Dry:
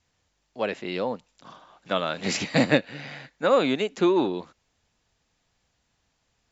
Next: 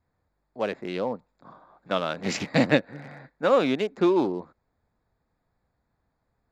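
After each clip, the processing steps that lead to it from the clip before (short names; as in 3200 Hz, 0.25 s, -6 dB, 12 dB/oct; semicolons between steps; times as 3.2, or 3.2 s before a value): Wiener smoothing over 15 samples; high shelf 6600 Hz -5.5 dB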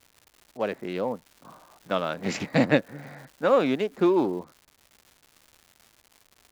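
crackle 280/s -41 dBFS; dynamic EQ 4800 Hz, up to -4 dB, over -47 dBFS, Q 0.77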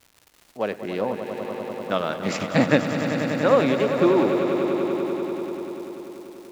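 swelling echo 97 ms, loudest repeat 5, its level -11 dB; gain +2 dB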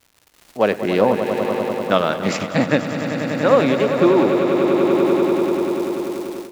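AGC gain up to 14 dB; gain -1 dB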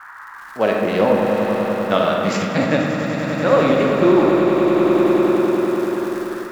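band noise 910–1800 Hz -38 dBFS; reverb RT60 1.7 s, pre-delay 4 ms, DRR 0.5 dB; gain -2 dB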